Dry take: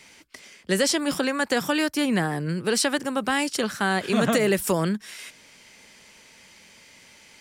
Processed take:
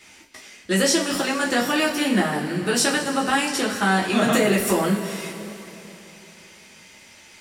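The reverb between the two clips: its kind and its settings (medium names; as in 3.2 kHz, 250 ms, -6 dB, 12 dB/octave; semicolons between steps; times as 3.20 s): two-slope reverb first 0.25 s, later 3.4 s, from -18 dB, DRR -6 dB; trim -3 dB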